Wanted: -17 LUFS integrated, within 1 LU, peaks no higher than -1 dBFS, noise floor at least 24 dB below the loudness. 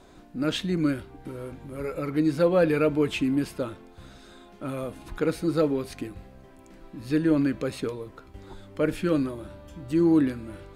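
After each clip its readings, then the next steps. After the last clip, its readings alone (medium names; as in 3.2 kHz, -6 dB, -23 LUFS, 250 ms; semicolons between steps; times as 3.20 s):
loudness -26.0 LUFS; peak level -11.0 dBFS; loudness target -17.0 LUFS
-> trim +9 dB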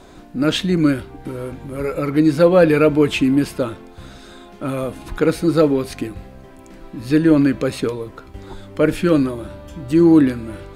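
loudness -17.0 LUFS; peak level -2.0 dBFS; noise floor -42 dBFS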